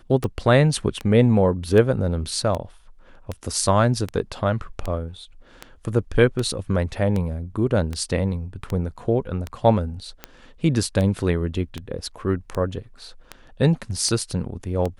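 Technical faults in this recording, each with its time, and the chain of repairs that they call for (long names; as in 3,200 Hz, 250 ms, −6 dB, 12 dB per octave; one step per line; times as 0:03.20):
scratch tick 78 rpm −14 dBFS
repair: click removal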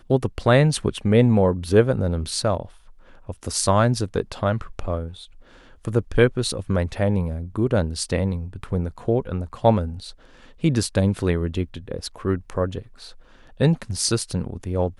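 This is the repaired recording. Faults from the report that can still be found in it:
none of them is left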